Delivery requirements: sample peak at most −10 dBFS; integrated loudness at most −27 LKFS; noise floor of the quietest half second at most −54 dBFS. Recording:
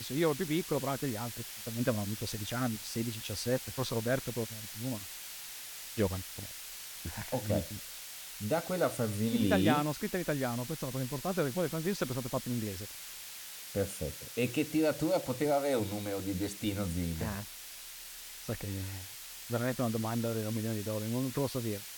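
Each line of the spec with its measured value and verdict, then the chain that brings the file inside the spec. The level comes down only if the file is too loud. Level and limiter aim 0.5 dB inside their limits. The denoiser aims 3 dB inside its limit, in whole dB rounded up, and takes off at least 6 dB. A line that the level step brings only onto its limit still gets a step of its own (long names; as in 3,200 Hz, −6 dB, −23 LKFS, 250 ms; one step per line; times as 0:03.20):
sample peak −14.0 dBFS: in spec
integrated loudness −34.5 LKFS: in spec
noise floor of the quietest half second −47 dBFS: out of spec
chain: broadband denoise 10 dB, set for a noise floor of −47 dBFS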